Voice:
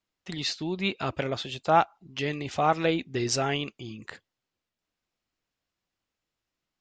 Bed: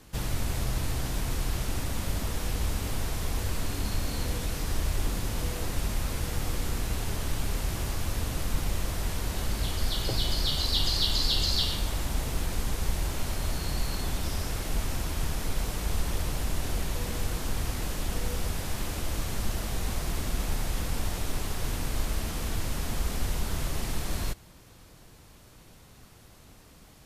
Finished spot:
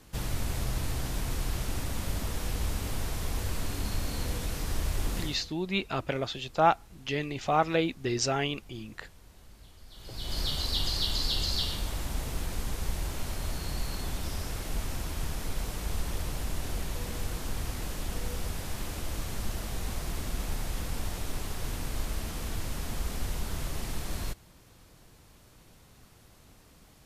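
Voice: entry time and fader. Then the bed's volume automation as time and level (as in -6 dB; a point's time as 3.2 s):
4.90 s, -1.5 dB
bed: 5.22 s -2 dB
5.53 s -23.5 dB
9.87 s -23.5 dB
10.38 s -3.5 dB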